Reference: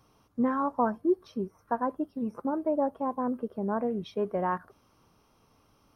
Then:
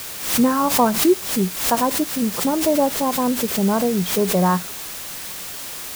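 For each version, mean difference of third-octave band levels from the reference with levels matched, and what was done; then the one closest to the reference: 16.5 dB: peaking EQ 180 Hz +9.5 dB 0.27 oct; added noise white -41 dBFS; swell ahead of each attack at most 82 dB/s; trim +9 dB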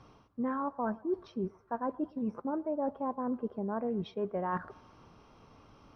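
2.5 dB: reverse; compression 4:1, threshold -40 dBFS, peak gain reduction 16.5 dB; reverse; distance through air 140 m; band-passed feedback delay 115 ms, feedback 59%, band-pass 910 Hz, level -21.5 dB; trim +7.5 dB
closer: second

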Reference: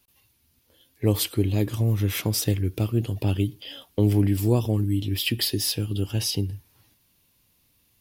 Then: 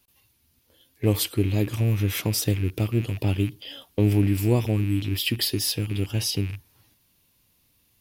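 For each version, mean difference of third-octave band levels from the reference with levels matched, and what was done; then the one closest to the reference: 1.5 dB: rattle on loud lows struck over -30 dBFS, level -30 dBFS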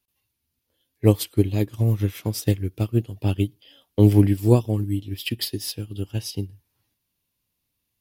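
5.5 dB: upward expansion 2.5:1, over -30 dBFS; trim +7.5 dB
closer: first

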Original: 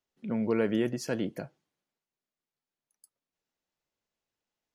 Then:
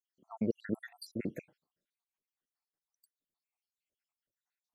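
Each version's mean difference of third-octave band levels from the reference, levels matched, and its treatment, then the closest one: 13.0 dB: random holes in the spectrogram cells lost 80%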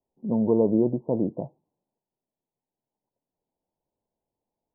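7.5 dB: steep low-pass 1 kHz 96 dB/octave; trim +6.5 dB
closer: second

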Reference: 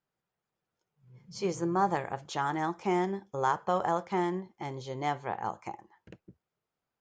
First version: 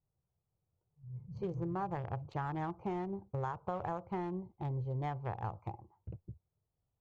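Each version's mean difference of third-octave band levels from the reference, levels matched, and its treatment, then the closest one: 5.5 dB: local Wiener filter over 25 samples; low-pass 1.7 kHz 6 dB/octave; resonant low shelf 150 Hz +13.5 dB, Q 1.5; compression, threshold -33 dBFS, peak gain reduction 10 dB; trim -1 dB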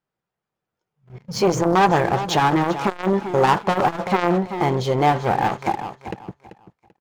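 7.0 dB: low-pass 3.5 kHz 6 dB/octave; waveshaping leveller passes 3; feedback delay 388 ms, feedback 25%, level -14 dB; transformer saturation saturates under 580 Hz; trim +9 dB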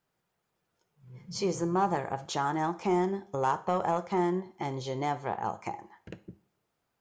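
2.5 dB: dynamic bell 2.5 kHz, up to -5 dB, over -44 dBFS, Q 0.81; in parallel at +2 dB: compression, threshold -41 dBFS, peak gain reduction 16.5 dB; on the sum: saturation -16 dBFS, distortion -24 dB; two-slope reverb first 0.43 s, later 1.9 s, from -26 dB, DRR 12 dB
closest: third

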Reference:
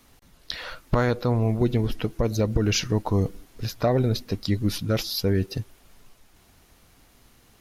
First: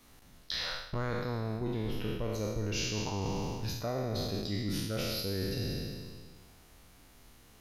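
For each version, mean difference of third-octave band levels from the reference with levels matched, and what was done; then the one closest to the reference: 10.0 dB: spectral sustain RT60 1.71 s; reverse; compression, threshold -26 dBFS, peak gain reduction 12 dB; reverse; trim -5 dB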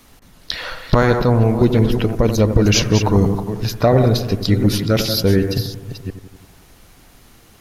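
4.0 dB: chunks repeated in reverse 359 ms, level -9 dB; on a send: bucket-brigade echo 87 ms, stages 1024, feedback 62%, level -10 dB; on the sum: trim +8 dB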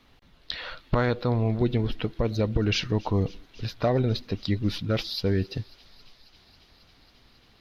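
3.0 dB: resonant high shelf 5.6 kHz -13.5 dB, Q 1.5; on a send: feedback echo behind a high-pass 272 ms, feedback 84%, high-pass 2.8 kHz, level -21 dB; on the sum: trim -2 dB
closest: third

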